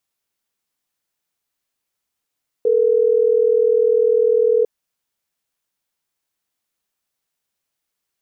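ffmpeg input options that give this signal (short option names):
-f lavfi -i "aevalsrc='0.178*(sin(2*PI*440*t)+sin(2*PI*480*t))*clip(min(mod(t,6),2-mod(t,6))/0.005,0,1)':d=3.12:s=44100"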